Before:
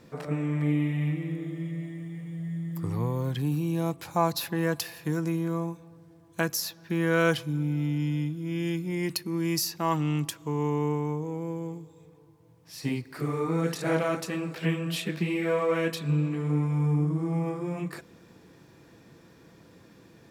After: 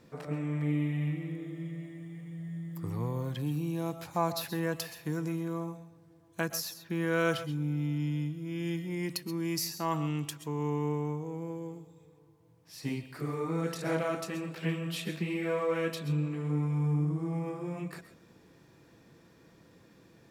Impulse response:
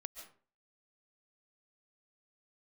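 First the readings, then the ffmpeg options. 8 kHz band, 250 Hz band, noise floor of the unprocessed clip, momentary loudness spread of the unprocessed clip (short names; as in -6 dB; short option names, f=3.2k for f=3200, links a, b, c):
-4.5 dB, -5.0 dB, -56 dBFS, 9 LU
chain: -filter_complex "[1:a]atrim=start_sample=2205,atrim=end_sample=6174[a];[0:a][a]afir=irnorm=-1:irlink=0"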